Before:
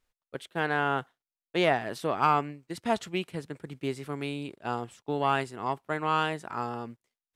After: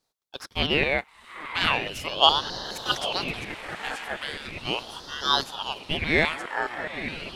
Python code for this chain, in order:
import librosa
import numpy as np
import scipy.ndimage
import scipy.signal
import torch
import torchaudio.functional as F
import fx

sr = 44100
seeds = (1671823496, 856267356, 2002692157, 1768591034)

y = fx.echo_diffused(x, sr, ms=903, feedback_pct=60, wet_db=-9.5)
y = fx.filter_lfo_highpass(y, sr, shape='saw_down', hz=4.8, low_hz=970.0, high_hz=2000.0, q=1.7)
y = fx.ring_lfo(y, sr, carrier_hz=1400.0, swing_pct=70, hz=0.38)
y = y * librosa.db_to_amplitude(7.0)